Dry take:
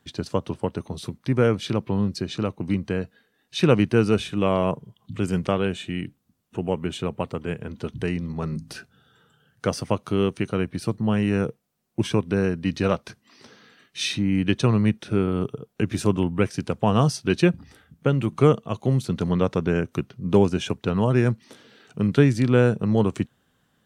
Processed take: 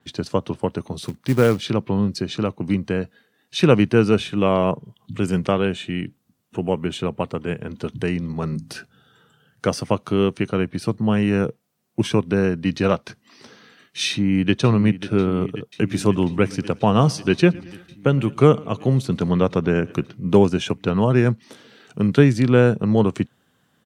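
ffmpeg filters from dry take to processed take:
ffmpeg -i in.wav -filter_complex "[0:a]asettb=1/sr,asplit=3[link_01][link_02][link_03];[link_01]atrim=end=1.034[link_04];[link_02]atrim=start=1.03:end=1.61,asetpts=PTS-STARTPTS,afade=type=in:duration=0.004:curve=qsin,afade=type=out:start_time=0.576:duration=0.004:curve=qsin,acrusher=bits=5:mode=log:mix=0:aa=0.000001[link_05];[link_03]atrim=start=1.606[link_06];[link_04][link_05]acrossfade=duration=0.004:curve1=hsin:curve2=qsin[link_07];[link_07][link_06]acrossfade=duration=0.004:curve1=qsin:curve2=hsin,asplit=2[link_08][link_09];[link_09]afade=type=in:start_time=14.1:duration=0.01,afade=type=out:start_time=14.56:duration=0.01,aecho=0:1:540|1080|1620|2160|2700|3240|3780|4320|4860|5400|5940|6480:0.223872|0.179098|0.143278|0.114623|0.091698|0.0733584|0.0586867|0.0469494|0.0375595|0.0300476|0.0240381|0.0192305[link_10];[link_08][link_10]amix=inputs=2:normalize=0,asplit=3[link_11][link_12][link_13];[link_11]afade=type=out:start_time=16.12:duration=0.02[link_14];[link_12]aecho=1:1:114|228|342|456:0.0668|0.0374|0.021|0.0117,afade=type=in:start_time=16.12:duration=0.02,afade=type=out:start_time=20.11:duration=0.02[link_15];[link_13]afade=type=in:start_time=20.11:duration=0.02[link_16];[link_14][link_15][link_16]amix=inputs=3:normalize=0,highpass=89,adynamicequalizer=threshold=0.00398:dfrequency=5900:dqfactor=0.7:tfrequency=5900:tqfactor=0.7:attack=5:release=100:ratio=0.375:range=3:mode=cutabove:tftype=highshelf,volume=3.5dB" out.wav

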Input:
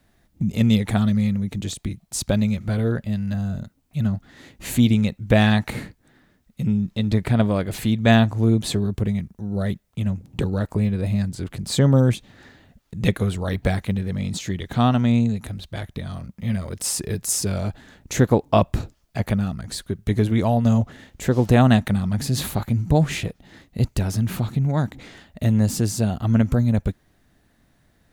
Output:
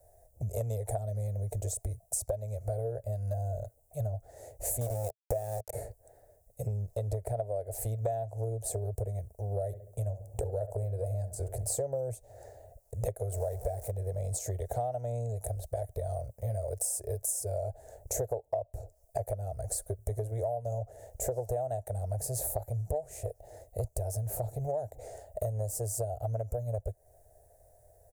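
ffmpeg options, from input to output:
ffmpeg -i in.wav -filter_complex "[0:a]asettb=1/sr,asplit=3[link_01][link_02][link_03];[link_01]atrim=end=4.814[link_04];[link_02]atrim=start=4.81:end=5.73,asetpts=PTS-STARTPTS,afade=type=in:duration=0.004:curve=qsin,afade=type=out:start_time=0.916:duration=0.004:curve=qsin,aeval=exprs='val(0)*gte(abs(val(0)),0.0944)':channel_layout=same[link_05];[link_03]atrim=start=5.726[link_06];[link_04][link_05]acrossfade=duration=0.004:curve1=hsin:curve2=qsin[link_07];[link_07][link_06]acrossfade=duration=0.004:curve1=qsin:curve2=hsin,asettb=1/sr,asplit=3[link_08][link_09][link_10];[link_08]atrim=end=9.664[link_11];[link_09]atrim=start=9.66:end=11.82,asetpts=PTS-STARTPTS,afade=type=in:duration=0.004:curve=qsin,afade=type=out:start_time=2.156:duration=0.004:curve=qsin,asplit=2[link_12][link_13];[link_13]adelay=68,lowpass=frequency=1600:poles=1,volume=-13dB,asplit=2[link_14][link_15];[link_15]adelay=68,lowpass=frequency=1600:poles=1,volume=0.42,asplit=2[link_16][link_17];[link_17]adelay=68,lowpass=frequency=1600:poles=1,volume=0.42,asplit=2[link_18][link_19];[link_19]adelay=68,lowpass=frequency=1600:poles=1,volume=0.42[link_20];[link_12][link_14][link_16][link_18][link_20]amix=inputs=5:normalize=0,atrim=end_sample=95256[link_21];[link_10]atrim=start=11.816[link_22];[link_11][link_21]acrossfade=duration=0.004:curve1=hsin:curve2=qsin[link_23];[link_23][link_22]acrossfade=duration=0.004:curve1=qsin:curve2=hsin,asettb=1/sr,asplit=3[link_24][link_25][link_26];[link_24]atrim=end=13.324[link_27];[link_25]atrim=start=13.32:end=13.91,asetpts=PTS-STARTPTS,afade=type=in:duration=0.004:curve=qsin,afade=type=out:start_time=0.586:duration=0.004:curve=qsin,aeval=exprs='val(0)+0.5*0.0376*sgn(val(0))':channel_layout=same[link_28];[link_26]atrim=start=13.906[link_29];[link_27][link_28]acrossfade=duration=0.004:curve1=hsin:curve2=qsin[link_30];[link_30][link_29]acrossfade=duration=0.004:curve1=qsin:curve2=hsin,firequalizer=gain_entry='entry(110,0);entry(160,-24);entry(260,-25);entry(440,4);entry(640,13);entry(1100,-21);entry(1600,-17);entry(3300,-26);entry(5400,-7);entry(8300,6)':delay=0.05:min_phase=1,acompressor=threshold=-30dB:ratio=12" out.wav

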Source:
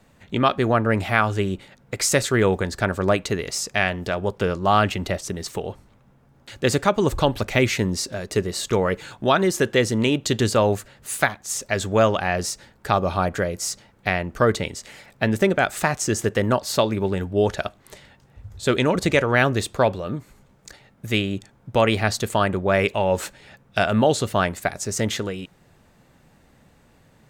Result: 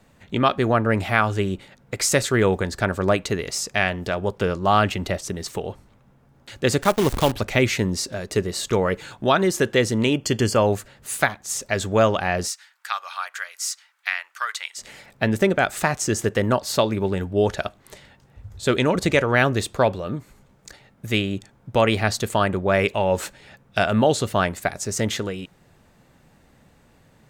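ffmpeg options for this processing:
ffmpeg -i in.wav -filter_complex "[0:a]asplit=3[link_01][link_02][link_03];[link_01]afade=type=out:start_time=6.81:duration=0.02[link_04];[link_02]acrusher=bits=5:dc=4:mix=0:aa=0.000001,afade=type=in:start_time=6.81:duration=0.02,afade=type=out:start_time=7.31:duration=0.02[link_05];[link_03]afade=type=in:start_time=7.31:duration=0.02[link_06];[link_04][link_05][link_06]amix=inputs=3:normalize=0,asettb=1/sr,asplit=3[link_07][link_08][link_09];[link_07]atrim=end=10.134[link_10];[link_08]atrim=start=10.13:end=10.67,asetpts=PTS-STARTPTS,afade=type=in:duration=0.004:curve=qsin,afade=type=out:start_time=0.536:duration=0.004:curve=qsin,asuperstop=centerf=3800:order=12:qfactor=5.8[link_11];[link_09]atrim=start=10.666[link_12];[link_10][link_11]acrossfade=duration=0.004:curve1=hsin:curve2=qsin[link_13];[link_13][link_12]acrossfade=duration=0.004:curve1=qsin:curve2=hsin,asplit=3[link_14][link_15][link_16];[link_14]afade=type=out:start_time=12.47:duration=0.02[link_17];[link_15]highpass=frequency=1200:width=0.5412,highpass=frequency=1200:width=1.3066,afade=type=in:start_time=12.47:duration=0.02,afade=type=out:start_time=14.77:duration=0.02[link_18];[link_16]afade=type=in:start_time=14.77:duration=0.02[link_19];[link_17][link_18][link_19]amix=inputs=3:normalize=0" out.wav

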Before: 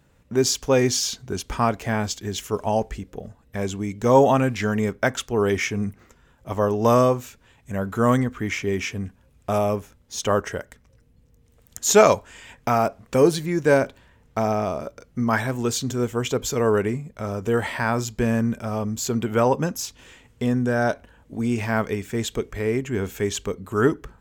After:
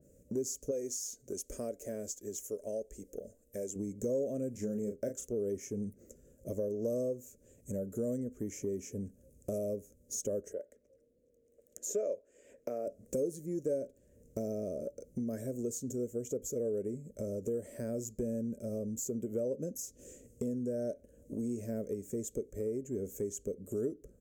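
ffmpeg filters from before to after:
ffmpeg -i in.wav -filter_complex "[0:a]asettb=1/sr,asplit=3[link_01][link_02][link_03];[link_01]atrim=end=0.714[link_04];[link_02]atrim=start=0.71:end=3.76,asetpts=PTS-STARTPTS,afade=type=in:duration=0.004:curve=qsin,afade=type=out:start_time=3.046:duration=0.004:curve=qsin,equalizer=frequency=120:width_type=o:width=3:gain=-14.5[link_05];[link_03]atrim=start=3.756[link_06];[link_04][link_05]acrossfade=duration=0.004:curve1=hsin:curve2=qsin[link_07];[link_07][link_06]acrossfade=duration=0.004:curve1=qsin:curve2=hsin,asettb=1/sr,asplit=3[link_08][link_09][link_10];[link_08]atrim=end=4.514[link_11];[link_09]atrim=start=4.51:end=5.28,asetpts=PTS-STARTPTS,afade=type=in:duration=0.004:curve=qsin,afade=type=out:start_time=0.766:duration=0.004:curve=qsin,asplit=2[link_12][link_13];[link_13]adelay=34,volume=-6dB[link_14];[link_12][link_14]amix=inputs=2:normalize=0,atrim=end_sample=33957[link_15];[link_10]atrim=start=5.276[link_16];[link_11][link_15]acrossfade=duration=0.004:curve1=hsin:curve2=qsin[link_17];[link_17][link_16]acrossfade=duration=0.004:curve1=qsin:curve2=hsin,asettb=1/sr,asplit=3[link_18][link_19][link_20];[link_18]atrim=end=10.534[link_21];[link_19]atrim=start=10.53:end=12.87,asetpts=PTS-STARTPTS,afade=type=in:duration=0.004:curve=qsin,afade=type=out:start_time=2.336:duration=0.004:curve=qsin,acrossover=split=330 3400:gain=0.112 1 0.158[link_22][link_23][link_24];[link_22][link_23][link_24]amix=inputs=3:normalize=0[link_25];[link_20]atrim=start=12.866[link_26];[link_21][link_25]acrossfade=duration=0.004:curve1=hsin:curve2=qsin[link_27];[link_27][link_26]acrossfade=duration=0.004:curve1=qsin:curve2=hsin,firequalizer=gain_entry='entry(140,0);entry(200,5);entry(580,10);entry(830,-28);entry(1600,-17);entry(2400,-16);entry(3600,-19);entry(6500,9)':delay=0.05:min_phase=1,acompressor=threshold=-32dB:ratio=3,adynamicequalizer=threshold=0.00398:dfrequency=2200:dqfactor=0.7:tfrequency=2200:tqfactor=0.7:attack=5:release=100:ratio=0.375:range=1.5:mode=cutabove:tftype=highshelf,volume=-6dB" out.wav

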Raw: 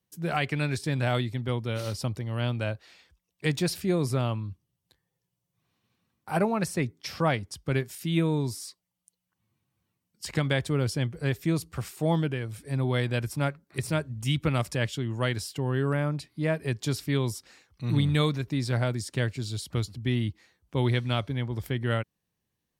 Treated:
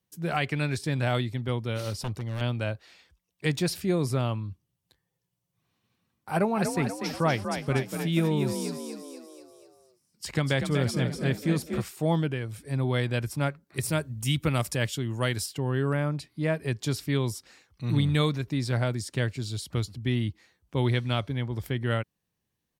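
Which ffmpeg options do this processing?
ffmpeg -i in.wav -filter_complex "[0:a]asettb=1/sr,asplit=3[link_01][link_02][link_03];[link_01]atrim=end=1.904[link_04];[link_02]atrim=start=1.9:end=2.41,asetpts=PTS-STARTPTS,afade=type=in:duration=0.004:curve=qsin,afade=type=out:start_time=0.506:duration=0.004:curve=qsin,aeval=exprs='0.0531*(abs(mod(val(0)/0.0531+3,4)-2)-1)':channel_layout=same[link_05];[link_03]atrim=start=2.406[link_06];[link_04][link_05]acrossfade=duration=0.004:curve1=hsin:curve2=qsin[link_07];[link_07][link_06]acrossfade=duration=0.004:curve1=qsin:curve2=hsin,asplit=3[link_08][link_09][link_10];[link_08]afade=type=out:start_time=6.54:duration=0.02[link_11];[link_09]asplit=7[link_12][link_13][link_14][link_15][link_16][link_17][link_18];[link_13]adelay=242,afreqshift=41,volume=-7dB[link_19];[link_14]adelay=484,afreqshift=82,volume=-12.5dB[link_20];[link_15]adelay=726,afreqshift=123,volume=-18dB[link_21];[link_16]adelay=968,afreqshift=164,volume=-23.5dB[link_22];[link_17]adelay=1210,afreqshift=205,volume=-29.1dB[link_23];[link_18]adelay=1452,afreqshift=246,volume=-34.6dB[link_24];[link_12][link_19][link_20][link_21][link_22][link_23][link_24]amix=inputs=7:normalize=0,afade=type=in:start_time=6.54:duration=0.02,afade=type=out:start_time=11.81:duration=0.02[link_25];[link_10]afade=type=in:start_time=11.81:duration=0.02[link_26];[link_11][link_25][link_26]amix=inputs=3:normalize=0,asettb=1/sr,asplit=3[link_27][link_28][link_29];[link_27]atrim=end=13.784[link_30];[link_28]atrim=start=13.78:end=15.46,asetpts=PTS-STARTPTS,afade=type=in:duration=0.004:curve=qsin,afade=type=out:start_time=1.676:duration=0.004:curve=qsin,highshelf=frequency=8000:gain=11.5[link_31];[link_29]atrim=start=15.456[link_32];[link_30][link_31]acrossfade=duration=0.004:curve1=hsin:curve2=qsin[link_33];[link_33][link_32]acrossfade=duration=0.004:curve1=qsin:curve2=hsin" out.wav

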